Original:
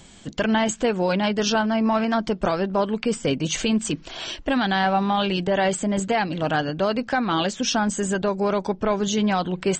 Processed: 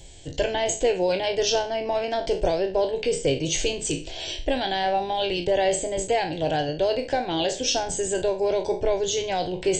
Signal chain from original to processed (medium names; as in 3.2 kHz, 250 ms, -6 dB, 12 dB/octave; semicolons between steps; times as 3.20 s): spectral sustain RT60 0.35 s; bass shelf 210 Hz +7 dB; static phaser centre 510 Hz, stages 4